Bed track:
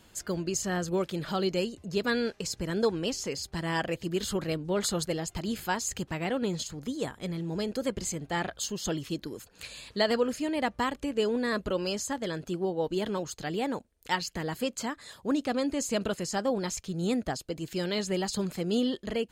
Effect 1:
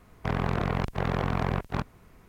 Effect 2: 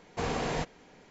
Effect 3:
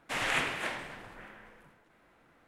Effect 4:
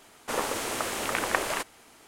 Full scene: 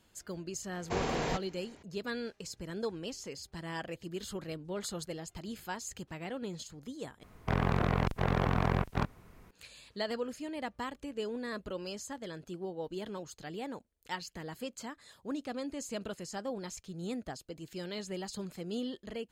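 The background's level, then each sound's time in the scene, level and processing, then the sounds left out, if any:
bed track -9.5 dB
0.73 s: add 2 -1.5 dB
7.23 s: replace with 1 -1.5 dB
not used: 3, 4

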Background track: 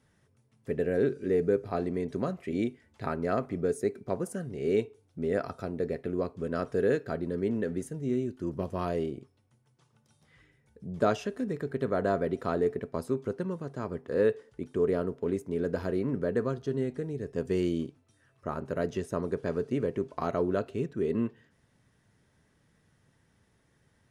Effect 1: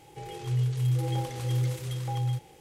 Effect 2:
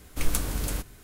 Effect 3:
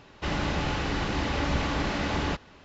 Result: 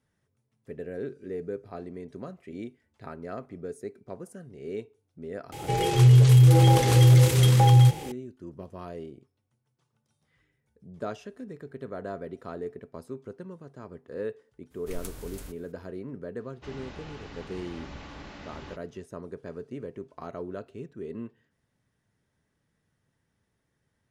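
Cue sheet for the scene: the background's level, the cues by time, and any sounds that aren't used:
background track -8.5 dB
5.52 s: add 1 -8.5 dB + loudness maximiser +23 dB
14.70 s: add 2 -12.5 dB, fades 0.02 s
16.40 s: add 3 -15.5 dB

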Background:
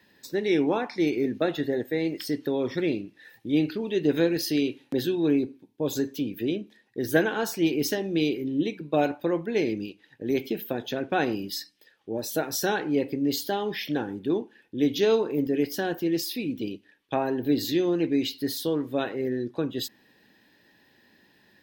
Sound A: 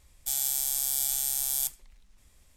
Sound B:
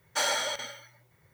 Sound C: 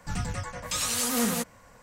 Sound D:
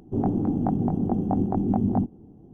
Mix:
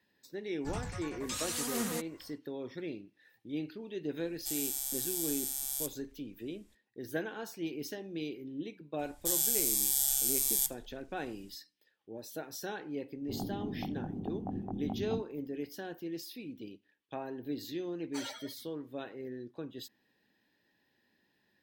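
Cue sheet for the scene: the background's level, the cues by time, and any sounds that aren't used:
background -14 dB
0.58 s: add C -8.5 dB, fades 0.10 s
4.19 s: add A -7.5 dB
8.99 s: add A -1 dB + Shepard-style phaser falling 1.4 Hz
13.16 s: add D -14.5 dB
17.98 s: add B -12 dB + expander on every frequency bin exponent 3

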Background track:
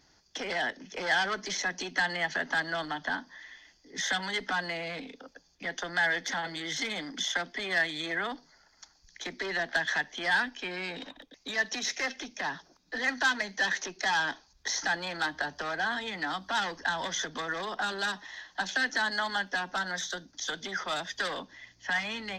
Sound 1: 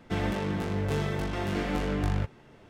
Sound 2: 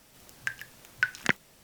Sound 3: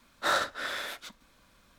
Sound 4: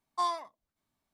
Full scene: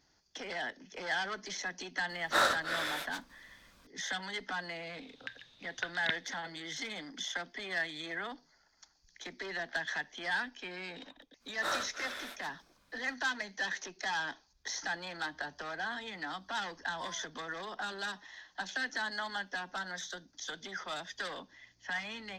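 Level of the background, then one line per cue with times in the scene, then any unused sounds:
background track -7 dB
2.09 s: add 3 -0.5 dB
4.80 s: add 2 -13.5 dB + resonant low-pass 3.7 kHz, resonance Q 11
11.39 s: add 3 -7.5 dB, fades 0.05 s
16.82 s: add 4 -17 dB
not used: 1

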